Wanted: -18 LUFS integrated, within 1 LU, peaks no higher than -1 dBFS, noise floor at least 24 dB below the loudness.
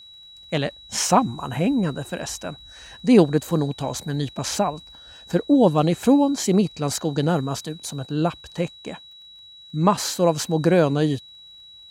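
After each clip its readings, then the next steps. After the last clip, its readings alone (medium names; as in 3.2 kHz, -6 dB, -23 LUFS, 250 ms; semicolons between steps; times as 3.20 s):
tick rate 28 per s; steady tone 3.9 kHz; tone level -43 dBFS; loudness -22.0 LUFS; peak level -2.5 dBFS; loudness target -18.0 LUFS
-> de-click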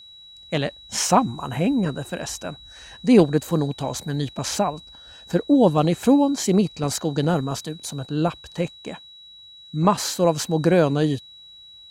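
tick rate 0 per s; steady tone 3.9 kHz; tone level -43 dBFS
-> band-stop 3.9 kHz, Q 30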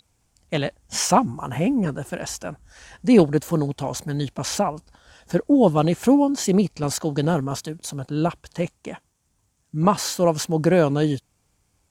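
steady tone not found; loudness -22.0 LUFS; peak level -2.5 dBFS; loudness target -18.0 LUFS
-> trim +4 dB; peak limiter -1 dBFS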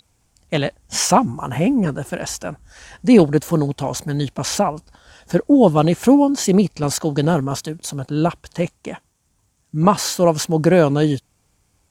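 loudness -18.0 LUFS; peak level -1.0 dBFS; noise floor -65 dBFS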